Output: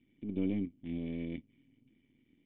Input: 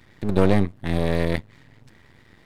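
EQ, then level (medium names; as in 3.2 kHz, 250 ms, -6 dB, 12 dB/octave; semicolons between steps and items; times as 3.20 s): cascade formant filter i; bass shelf 130 Hz -10 dB; -3.5 dB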